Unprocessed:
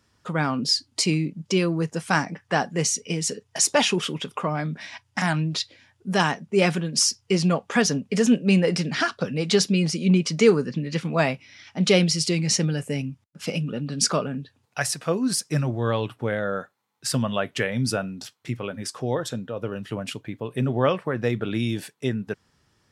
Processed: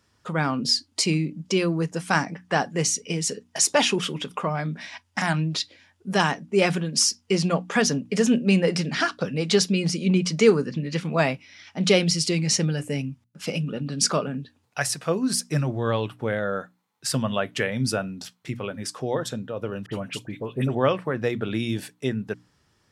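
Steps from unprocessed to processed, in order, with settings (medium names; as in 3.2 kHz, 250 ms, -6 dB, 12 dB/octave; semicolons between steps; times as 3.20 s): hum notches 60/120/180/240/300 Hz; 19.86–20.75 s: phase dispersion highs, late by 64 ms, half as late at 2 kHz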